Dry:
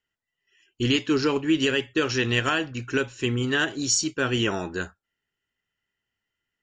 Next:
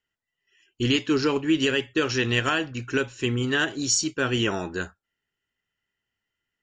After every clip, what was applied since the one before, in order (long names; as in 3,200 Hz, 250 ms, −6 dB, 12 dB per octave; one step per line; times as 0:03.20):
no processing that can be heard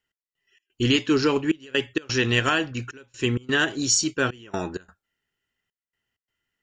gate pattern "x..xx.xxxxxx" 129 BPM −24 dB
level +2 dB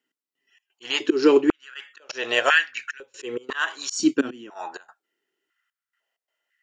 volume swells 182 ms
high-pass on a step sequencer 2 Hz 270–1,800 Hz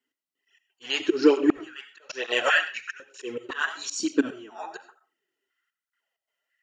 on a send at −12 dB: convolution reverb RT60 0.35 s, pre-delay 45 ms
on the sum: through-zero flanger with one copy inverted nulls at 1.1 Hz, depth 6.6 ms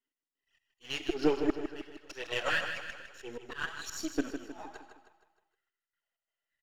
gain on one half-wave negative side −7 dB
on a send: repeating echo 156 ms, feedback 47%, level −8.5 dB
on the sum: level −7 dB